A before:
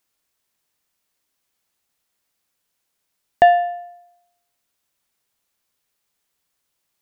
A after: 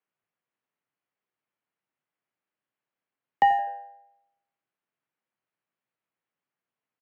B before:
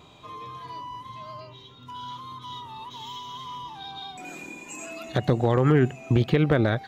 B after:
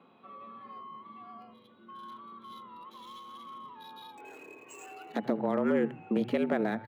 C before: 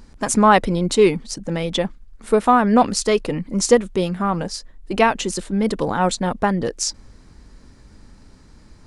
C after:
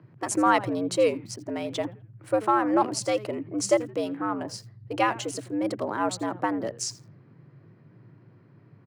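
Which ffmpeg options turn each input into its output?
-filter_complex "[0:a]bandreject=f=3500:w=15,asplit=4[s0][s1][s2][s3];[s1]adelay=83,afreqshift=-100,volume=0.133[s4];[s2]adelay=166,afreqshift=-200,volume=0.0442[s5];[s3]adelay=249,afreqshift=-300,volume=0.0145[s6];[s0][s4][s5][s6]amix=inputs=4:normalize=0,afreqshift=100,acrossover=split=2900[s7][s8];[s8]aeval=exprs='sgn(val(0))*max(abs(val(0))-0.00422,0)':c=same[s9];[s7][s9]amix=inputs=2:normalize=0,volume=0.398"

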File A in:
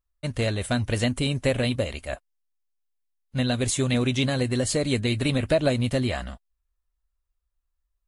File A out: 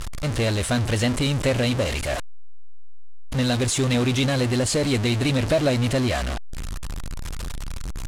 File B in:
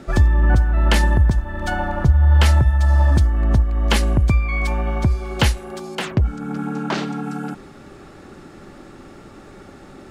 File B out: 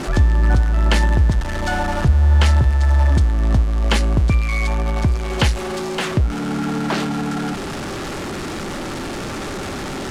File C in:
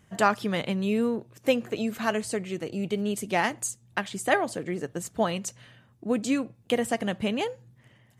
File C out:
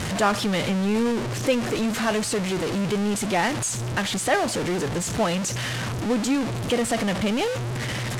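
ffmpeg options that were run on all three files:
-af "aeval=exprs='val(0)+0.5*0.0944*sgn(val(0))':c=same,lowpass=9100,volume=0.841"

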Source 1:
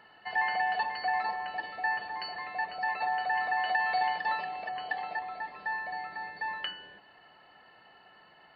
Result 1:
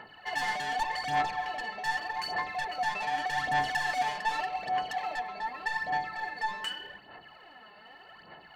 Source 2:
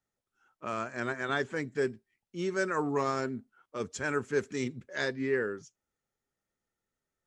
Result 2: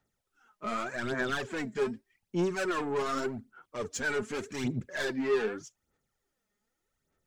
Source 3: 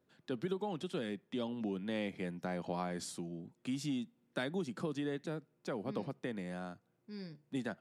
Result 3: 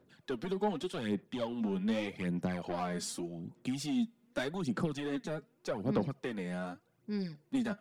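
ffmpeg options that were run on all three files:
-af "asoftclip=type=tanh:threshold=0.0211,aphaser=in_gain=1:out_gain=1:delay=4.9:decay=0.6:speed=0.84:type=sinusoidal,volume=1.5"

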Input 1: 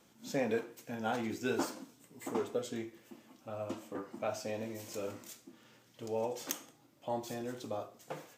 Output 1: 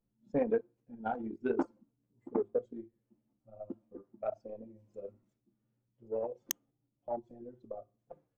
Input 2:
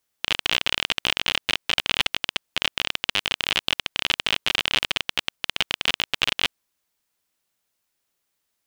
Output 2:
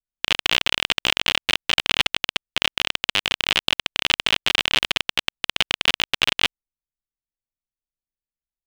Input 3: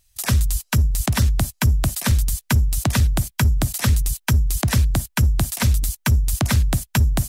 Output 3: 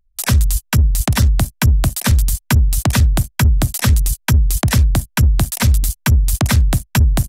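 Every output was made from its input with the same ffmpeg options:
-filter_complex "[0:a]anlmdn=100,asplit=2[s0][s1];[s1]alimiter=limit=0.251:level=0:latency=1,volume=0.841[s2];[s0][s2]amix=inputs=2:normalize=0"

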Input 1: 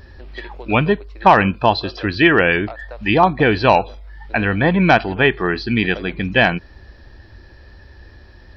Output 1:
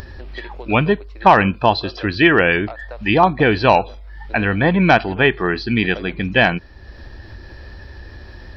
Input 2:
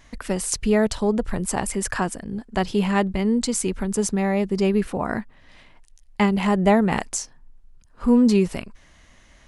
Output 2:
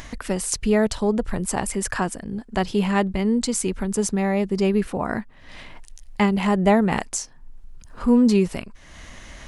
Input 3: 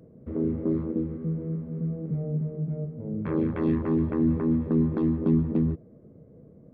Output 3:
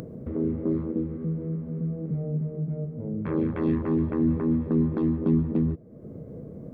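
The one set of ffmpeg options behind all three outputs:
-af "acompressor=mode=upward:threshold=0.0398:ratio=2.5"

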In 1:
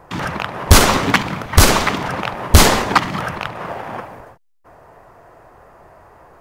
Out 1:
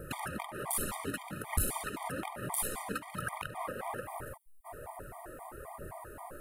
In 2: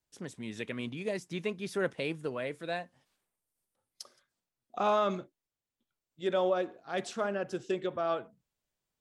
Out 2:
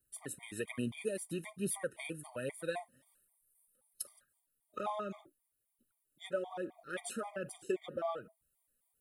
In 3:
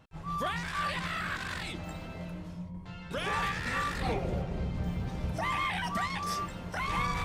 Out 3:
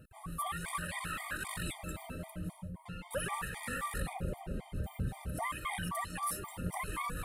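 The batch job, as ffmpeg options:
-af "acompressor=threshold=0.0224:ratio=16,highshelf=f=7700:t=q:w=3:g=11,aphaser=in_gain=1:out_gain=1:delay=4.4:decay=0.4:speed=1.2:type=triangular,afftfilt=real='re*gt(sin(2*PI*3.8*pts/sr)*(1-2*mod(floor(b*sr/1024/620),2)),0)':imag='im*gt(sin(2*PI*3.8*pts/sr)*(1-2*mod(floor(b*sr/1024/620),2)),0)':win_size=1024:overlap=0.75,volume=1.12"

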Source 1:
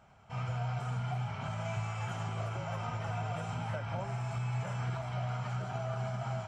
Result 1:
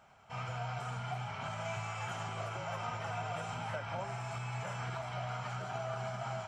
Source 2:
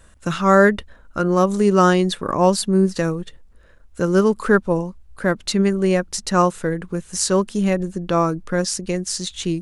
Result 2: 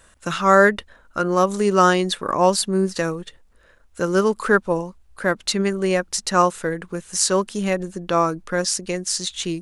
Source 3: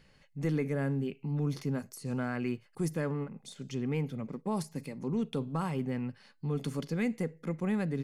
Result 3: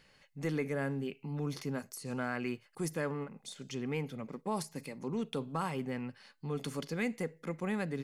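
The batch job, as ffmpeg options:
-af "lowshelf=f=320:g=-10,volume=1.26"

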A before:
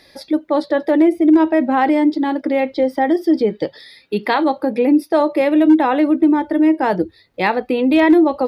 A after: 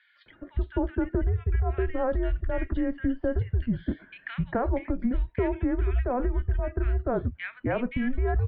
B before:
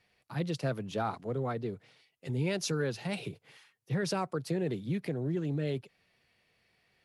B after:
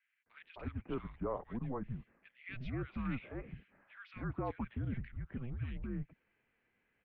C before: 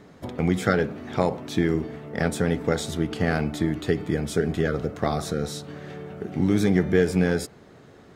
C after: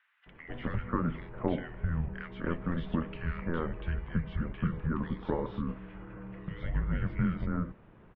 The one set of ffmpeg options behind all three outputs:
-filter_complex "[0:a]acompressor=threshold=0.126:ratio=6,highpass=f=240:t=q:w=0.5412,highpass=f=240:t=q:w=1.307,lowpass=f=2900:t=q:w=0.5176,lowpass=f=2900:t=q:w=0.7071,lowpass=f=2900:t=q:w=1.932,afreqshift=-250,acrossover=split=1600[s0][s1];[s0]adelay=260[s2];[s2][s1]amix=inputs=2:normalize=0,volume=0.631"

